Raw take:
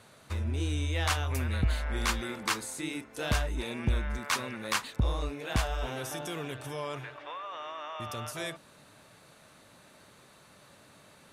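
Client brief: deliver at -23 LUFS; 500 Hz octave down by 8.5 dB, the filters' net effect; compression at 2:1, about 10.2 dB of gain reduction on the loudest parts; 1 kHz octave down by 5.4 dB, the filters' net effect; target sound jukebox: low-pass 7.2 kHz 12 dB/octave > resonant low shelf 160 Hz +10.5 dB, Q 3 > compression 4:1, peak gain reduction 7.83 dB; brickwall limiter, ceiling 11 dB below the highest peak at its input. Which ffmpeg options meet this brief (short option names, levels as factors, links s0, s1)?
-af "equalizer=f=500:t=o:g=-8,equalizer=f=1000:t=o:g=-4.5,acompressor=threshold=0.00794:ratio=2,alimiter=level_in=2.82:limit=0.0631:level=0:latency=1,volume=0.355,lowpass=7200,lowshelf=f=160:t=q:w=3:g=10.5,acompressor=threshold=0.0316:ratio=4,volume=5.01"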